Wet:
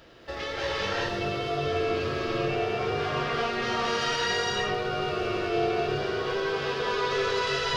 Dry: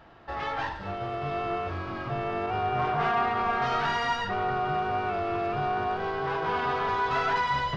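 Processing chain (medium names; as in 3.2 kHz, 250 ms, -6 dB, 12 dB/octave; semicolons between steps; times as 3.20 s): FFT filter 200 Hz 0 dB, 530 Hz +8 dB, 770 Hz -7 dB, 5.4 kHz +14 dB; compression, threshold -29 dBFS, peak gain reduction 7 dB; gated-style reverb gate 430 ms rising, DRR -5 dB; trim -1.5 dB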